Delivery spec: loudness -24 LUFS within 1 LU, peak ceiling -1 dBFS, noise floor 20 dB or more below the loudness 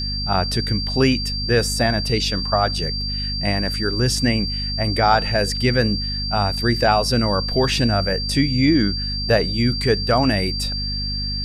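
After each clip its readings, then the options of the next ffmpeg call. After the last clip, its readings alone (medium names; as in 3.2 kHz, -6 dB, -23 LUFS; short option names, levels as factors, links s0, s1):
hum 50 Hz; highest harmonic 250 Hz; hum level -25 dBFS; steady tone 4.7 kHz; tone level -25 dBFS; loudness -19.5 LUFS; peak level -2.5 dBFS; loudness target -24.0 LUFS
-> -af "bandreject=f=50:t=h:w=4,bandreject=f=100:t=h:w=4,bandreject=f=150:t=h:w=4,bandreject=f=200:t=h:w=4,bandreject=f=250:t=h:w=4"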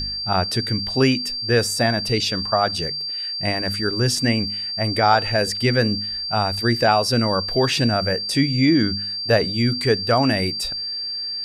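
hum not found; steady tone 4.7 kHz; tone level -25 dBFS
-> -af "bandreject=f=4700:w=30"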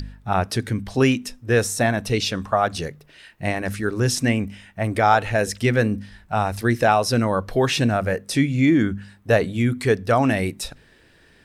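steady tone not found; loudness -21.5 LUFS; peak level -3.5 dBFS; loudness target -24.0 LUFS
-> -af "volume=0.75"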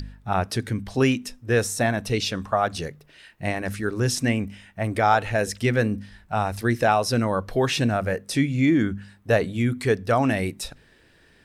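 loudness -24.0 LUFS; peak level -6.0 dBFS; noise floor -57 dBFS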